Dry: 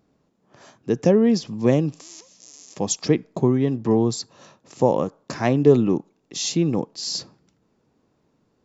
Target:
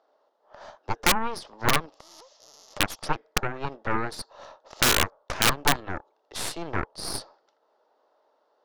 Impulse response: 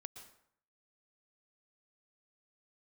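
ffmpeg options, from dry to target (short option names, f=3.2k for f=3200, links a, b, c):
-filter_complex "[0:a]asplit=2[a][b];[b]alimiter=limit=-14.5dB:level=0:latency=1:release=15,volume=0dB[c];[a][c]amix=inputs=2:normalize=0,highpass=f=470:w=0.5412,highpass=f=470:w=1.3066,equalizer=f=610:t=q:w=4:g=8,equalizer=f=870:t=q:w=4:g=7,equalizer=f=1.3k:t=q:w=4:g=4,equalizer=f=2.4k:t=q:w=4:g=-10,lowpass=f=4.9k:w=0.5412,lowpass=f=4.9k:w=1.3066,aeval=exprs='0.944*(cos(1*acos(clip(val(0)/0.944,-1,1)))-cos(1*PI/2))+0.299*(cos(4*acos(clip(val(0)/0.944,-1,1)))-cos(4*PI/2))+0.188*(cos(7*acos(clip(val(0)/0.944,-1,1)))-cos(7*PI/2))+0.075*(cos(8*acos(clip(val(0)/0.944,-1,1)))-cos(8*PI/2))':c=same,aeval=exprs='(mod(1.33*val(0)+1,2)-1)/1.33':c=same,acompressor=threshold=-37dB:ratio=1.5,volume=3dB"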